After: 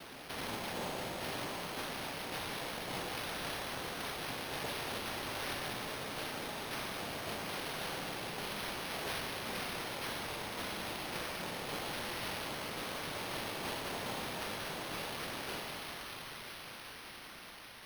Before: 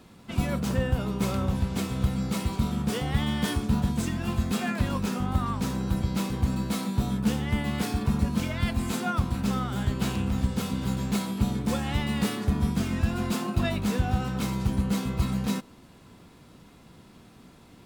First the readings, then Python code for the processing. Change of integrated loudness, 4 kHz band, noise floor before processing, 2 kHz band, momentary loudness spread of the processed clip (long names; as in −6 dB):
−11.5 dB, −2.0 dB, −53 dBFS, −2.5 dB, 5 LU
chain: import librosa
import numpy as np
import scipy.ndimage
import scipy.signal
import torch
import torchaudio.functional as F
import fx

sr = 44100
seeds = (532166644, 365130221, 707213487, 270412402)

y = fx.fade_out_tail(x, sr, length_s=4.69)
y = fx.tilt_shelf(y, sr, db=-4.5, hz=970.0)
y = fx.rider(y, sr, range_db=10, speed_s=0.5)
y = fx.ladder_highpass(y, sr, hz=290.0, resonance_pct=25)
y = fx.echo_wet_highpass(y, sr, ms=195, feedback_pct=84, hz=2100.0, wet_db=-8)
y = fx.noise_vocoder(y, sr, seeds[0], bands=2)
y = fx.rev_schroeder(y, sr, rt60_s=2.1, comb_ms=30, drr_db=2.0)
y = np.repeat(y[::6], 6)[:len(y)]
y = fx.env_flatten(y, sr, amount_pct=50)
y = y * 10.0 ** (-5.0 / 20.0)